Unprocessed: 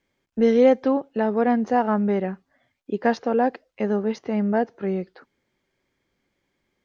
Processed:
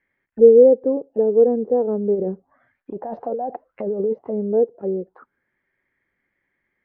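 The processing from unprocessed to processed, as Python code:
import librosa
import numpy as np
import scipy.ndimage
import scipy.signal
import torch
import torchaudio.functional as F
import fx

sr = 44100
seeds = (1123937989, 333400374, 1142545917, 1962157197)

y = fx.over_compress(x, sr, threshold_db=-27.0, ratio=-1.0, at=(2.14, 4.12), fade=0.02)
y = fx.envelope_lowpass(y, sr, base_hz=460.0, top_hz=1900.0, q=6.3, full_db=-22.0, direction='down')
y = y * librosa.db_to_amplitude(-5.5)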